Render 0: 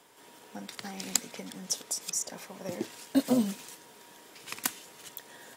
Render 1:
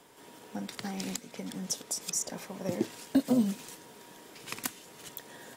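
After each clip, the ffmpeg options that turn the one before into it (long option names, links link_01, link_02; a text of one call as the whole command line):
ffmpeg -i in.wav -af "lowshelf=frequency=440:gain=7,alimiter=limit=-15.5dB:level=0:latency=1:release=363" out.wav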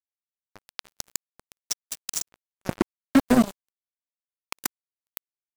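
ffmpeg -i in.wav -af "acrusher=bits=3:mix=0:aa=0.5,volume=6.5dB" out.wav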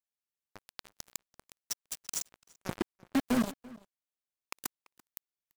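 ffmpeg -i in.wav -filter_complex "[0:a]asoftclip=type=hard:threshold=-20.5dB,asplit=2[link_01][link_02];[link_02]adelay=338.2,volume=-21dB,highshelf=frequency=4000:gain=-7.61[link_03];[link_01][link_03]amix=inputs=2:normalize=0,volume=-2dB" out.wav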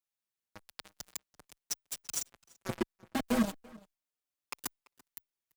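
ffmpeg -i in.wav -filter_complex "[0:a]asplit=2[link_01][link_02];[link_02]adelay=5.6,afreqshift=-0.36[link_03];[link_01][link_03]amix=inputs=2:normalize=1,volume=3dB" out.wav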